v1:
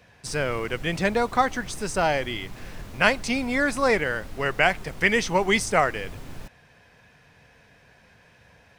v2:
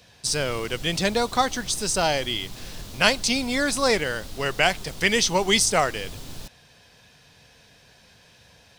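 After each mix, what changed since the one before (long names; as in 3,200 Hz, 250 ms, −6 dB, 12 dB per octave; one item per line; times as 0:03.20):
master: add high shelf with overshoot 2,800 Hz +8.5 dB, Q 1.5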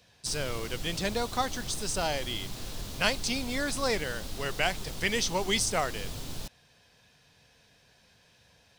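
speech −8.0 dB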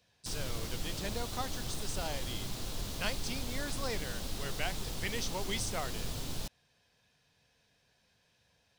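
speech −9.5 dB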